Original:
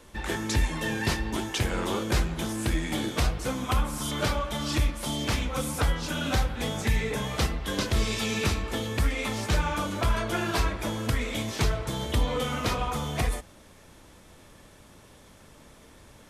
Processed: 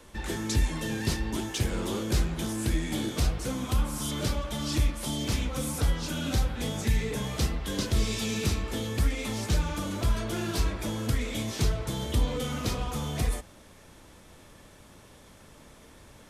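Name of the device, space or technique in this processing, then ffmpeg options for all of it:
one-band saturation: -filter_complex "[0:a]acrossover=split=450|3600[a][b][c];[b]asoftclip=type=tanh:threshold=-38.5dB[d];[a][d][c]amix=inputs=3:normalize=0"

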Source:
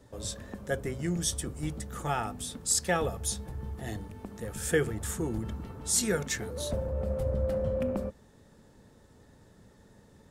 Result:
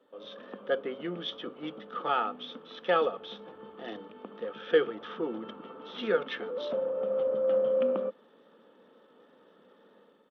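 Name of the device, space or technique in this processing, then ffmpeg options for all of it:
Bluetooth headset: -af "highpass=f=230:w=0.5412,highpass=f=230:w=1.3066,equalizer=f=125:t=o:w=0.33:g=-8,equalizer=f=500:t=o:w=0.33:g=8,equalizer=f=1.25k:t=o:w=0.33:g=10,equalizer=f=2k:t=o:w=0.33:g=-4,equalizer=f=3.15k:t=o:w=0.33:g=8,dynaudnorm=f=120:g=5:m=7.5dB,aresample=8000,aresample=44100,volume=-8.5dB" -ar 32000 -c:a sbc -b:a 64k

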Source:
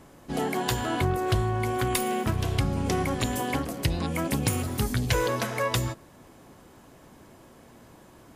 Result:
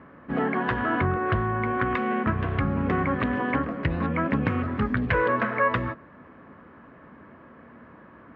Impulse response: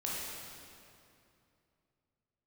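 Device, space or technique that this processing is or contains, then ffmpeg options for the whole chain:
bass cabinet: -af "highpass=77,equalizer=f=120:t=q:w=4:g=-7,equalizer=f=230:t=q:w=4:g=3,equalizer=f=360:t=q:w=4:g=-4,equalizer=f=780:t=q:w=4:g=-6,equalizer=f=1.2k:t=q:w=4:g=6,equalizer=f=1.7k:t=q:w=4:g=5,lowpass=f=2.2k:w=0.5412,lowpass=f=2.2k:w=1.3066,volume=3.5dB"

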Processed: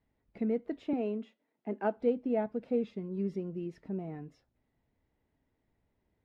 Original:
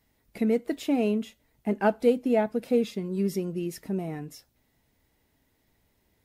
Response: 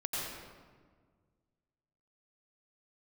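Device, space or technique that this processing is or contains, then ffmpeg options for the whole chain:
phone in a pocket: -filter_complex "[0:a]lowpass=3.9k,highshelf=f=2.1k:g=-11,asettb=1/sr,asplit=3[a][b][c];[a]atrim=end=0.934[d];[b]atrim=start=0.93:end=1.97,asetpts=PTS-STARTPTS,afade=t=in:d=0.004:c=qsin,afade=t=out:st=1.036:d=0.004:c=qsin,highpass=f=220:w=0.5412,highpass=f=220:w=1.3066[e];[c]atrim=start=1.966[f];[d][e]acrossfade=d=0.004:c1=hsin:c2=qsin[g];[g][f]acrossfade=d=0.004:c1=qsin:c2=hsin,volume=-6.5dB"

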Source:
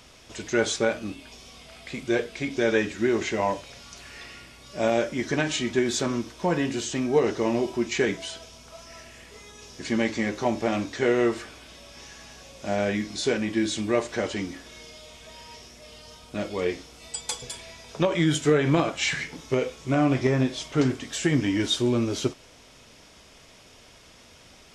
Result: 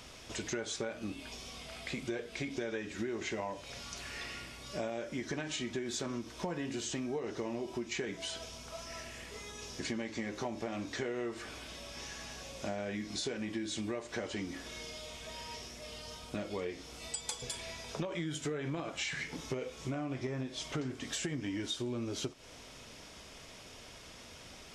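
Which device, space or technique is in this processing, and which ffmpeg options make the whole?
serial compression, leveller first: -af "acompressor=threshold=-26dB:ratio=2,acompressor=threshold=-36dB:ratio=4"

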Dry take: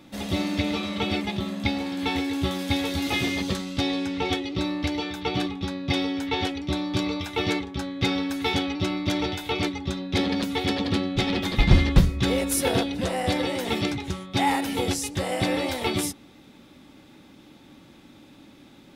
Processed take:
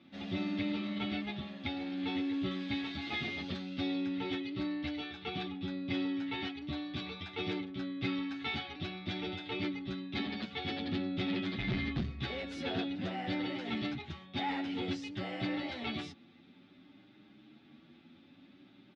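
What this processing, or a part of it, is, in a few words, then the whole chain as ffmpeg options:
barber-pole flanger into a guitar amplifier: -filter_complex "[0:a]asplit=2[a][b];[b]adelay=8.9,afreqshift=0.55[c];[a][c]amix=inputs=2:normalize=1,asoftclip=type=tanh:threshold=-20dB,highpass=110,equalizer=f=230:t=q:w=4:g=3,equalizer=f=500:t=q:w=4:g=-9,equalizer=f=970:t=q:w=4:g=-8,lowpass=f=4.1k:w=0.5412,lowpass=f=4.1k:w=1.3066,volume=-5.5dB"

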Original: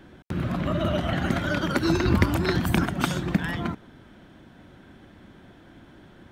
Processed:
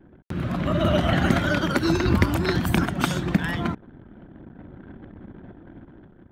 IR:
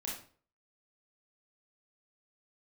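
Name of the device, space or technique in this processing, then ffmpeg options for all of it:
voice memo with heavy noise removal: -af "anlmdn=0.01,dynaudnorm=f=320:g=5:m=9.5dB,volume=-1dB"

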